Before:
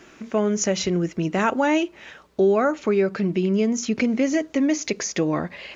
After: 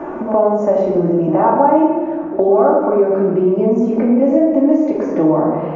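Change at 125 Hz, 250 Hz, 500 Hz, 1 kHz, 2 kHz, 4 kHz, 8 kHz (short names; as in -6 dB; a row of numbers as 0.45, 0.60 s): +4.5 dB, +8.0 dB, +10.0 dB, +11.5 dB, -6.5 dB, under -15 dB, n/a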